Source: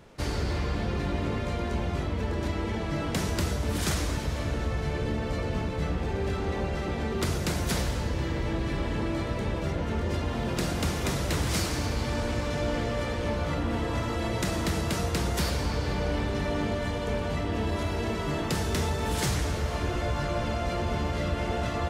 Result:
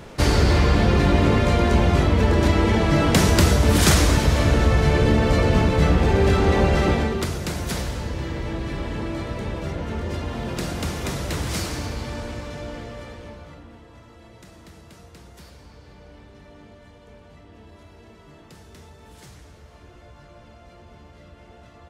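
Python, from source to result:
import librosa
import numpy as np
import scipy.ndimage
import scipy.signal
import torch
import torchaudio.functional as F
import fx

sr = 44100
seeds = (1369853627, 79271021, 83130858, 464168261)

y = fx.gain(x, sr, db=fx.line((6.9, 12.0), (7.3, 1.0), (11.71, 1.0), (13.12, -8.0), (13.84, -18.0)))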